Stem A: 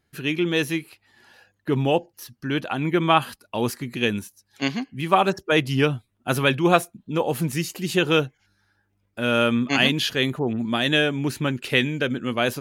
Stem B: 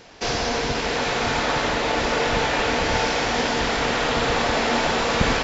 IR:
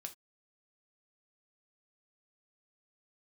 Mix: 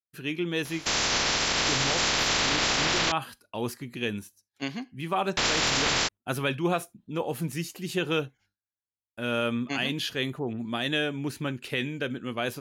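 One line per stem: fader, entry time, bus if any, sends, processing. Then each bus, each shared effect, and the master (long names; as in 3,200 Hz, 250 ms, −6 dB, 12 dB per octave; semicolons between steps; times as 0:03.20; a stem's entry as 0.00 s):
−9.5 dB, 0.00 s, send −4.5 dB, downward expander −46 dBFS
+2.5 dB, 0.65 s, muted 0:03.12–0:05.37, no send, ceiling on every frequency bin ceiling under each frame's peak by 22 dB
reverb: on, pre-delay 3 ms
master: brickwall limiter −16 dBFS, peak gain reduction 11 dB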